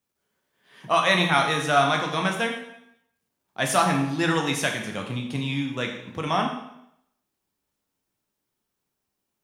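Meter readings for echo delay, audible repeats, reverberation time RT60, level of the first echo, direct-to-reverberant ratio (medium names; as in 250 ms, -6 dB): no echo, no echo, 0.80 s, no echo, 1.5 dB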